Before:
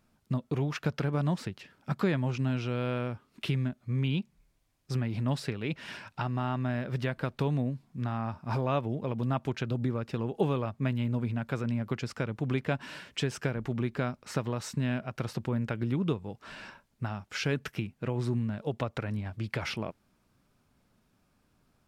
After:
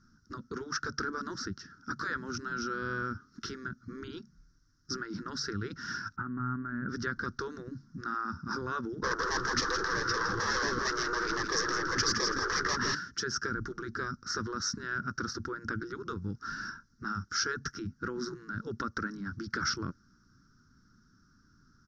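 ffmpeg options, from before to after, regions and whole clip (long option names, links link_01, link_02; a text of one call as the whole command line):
ffmpeg -i in.wav -filter_complex "[0:a]asettb=1/sr,asplit=3[link_01][link_02][link_03];[link_01]atrim=end=6.164[link_04];[link_02]atrim=start=6.16:end=6.89,asetpts=PTS-STARTPTS,afade=type=in:duration=0.004:curve=qsin,afade=type=out:start_time=0.726:duration=0.004:curve=qsin,lowpass=frequency=2000:width=0.5412,lowpass=frequency=2000:width=1.3066,acompressor=threshold=-33dB:ratio=6:attack=3.2:release=140:knee=1:detection=peak[link_05];[link_03]atrim=start=6.886[link_06];[link_04][link_05]acrossfade=duration=0.004:curve1=hsin:curve2=qsin[link_07];[link_07][link_06]acrossfade=duration=0.004:curve1=qsin:curve2=hsin,asettb=1/sr,asplit=3[link_08][link_09][link_10];[link_08]atrim=end=9.024[link_11];[link_09]atrim=start=9.02:end=12.95,asetpts=PTS-STARTPTS,afade=type=in:duration=0.004:curve=qsin,afade=type=out:start_time=3.926:duration=0.004:curve=qsin,agate=range=-9dB:threshold=-42dB:ratio=16:release=100:detection=peak,asplit=2[link_12][link_13];[link_13]highpass=frequency=720:poles=1,volume=34dB,asoftclip=type=tanh:threshold=-14.5dB[link_14];[link_12][link_14]amix=inputs=2:normalize=0,lowpass=frequency=2500:poles=1,volume=-6dB,aecho=1:1:164|328|492|656:0.398|0.147|0.0545|0.0202,atrim=end_sample=173313[link_15];[link_10]atrim=start=12.946[link_16];[link_11][link_15]acrossfade=duration=0.004:curve1=hsin:curve2=qsin[link_17];[link_17][link_16]acrossfade=duration=0.004:curve1=qsin:curve2=hsin,firequalizer=gain_entry='entry(290,0);entry(670,-29);entry(1400,9);entry(2400,-26);entry(5600,9);entry(8200,-26)':delay=0.05:min_phase=1,afftfilt=real='re*lt(hypot(re,im),0.112)':imag='im*lt(hypot(re,im),0.112)':win_size=1024:overlap=0.75,bandreject=frequency=560:width=16,volume=6dB" out.wav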